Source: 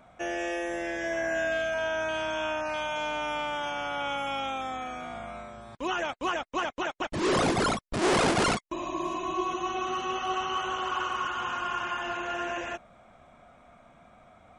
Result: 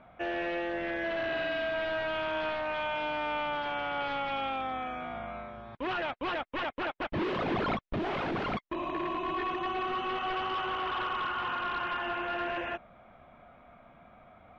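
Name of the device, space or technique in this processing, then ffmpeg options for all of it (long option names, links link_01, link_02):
synthesiser wavefolder: -af "aeval=exprs='0.0447*(abs(mod(val(0)/0.0447+3,4)-2)-1)':channel_layout=same,lowpass=frequency=3300:width=0.5412,lowpass=frequency=3300:width=1.3066"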